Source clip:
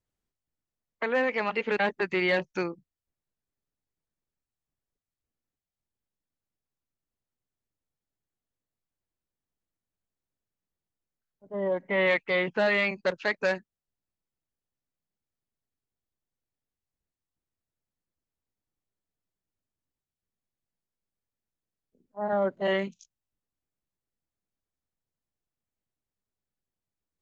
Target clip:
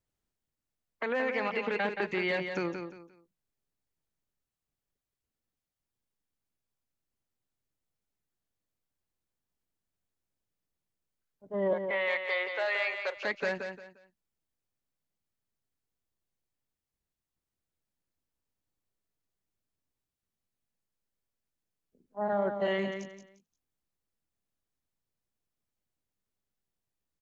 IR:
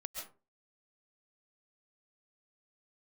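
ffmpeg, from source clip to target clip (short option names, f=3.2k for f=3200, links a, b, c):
-filter_complex "[0:a]alimiter=limit=-21.5dB:level=0:latency=1:release=74,asettb=1/sr,asplit=3[a][b][c];[a]atrim=end=11.734[d];[b]atrim=start=11.73:end=13.17,asetpts=PTS-STARTPTS,afade=t=in:d=0.004:c=qsin,afade=t=out:st=1.436:d=0.004:c=qsin,highpass=f=530:w=0.5412,highpass=f=530:w=1.3066[e];[c]atrim=start=13.166[f];[d][e]acrossfade=d=0.004:c1=hsin:c2=qsin[g];[g][f]acrossfade=d=0.004:c1=qsin:c2=hsin,aecho=1:1:175|350|525:0.447|0.121|0.0326"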